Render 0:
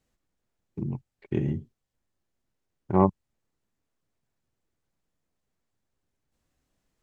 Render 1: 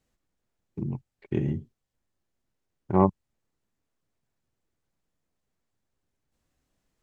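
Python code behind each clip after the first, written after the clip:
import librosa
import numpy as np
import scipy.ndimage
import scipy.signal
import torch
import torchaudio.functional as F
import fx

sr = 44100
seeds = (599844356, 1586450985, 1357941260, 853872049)

y = x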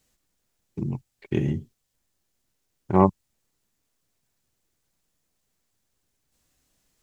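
y = fx.high_shelf(x, sr, hz=3000.0, db=11.5)
y = y * 10.0 ** (2.5 / 20.0)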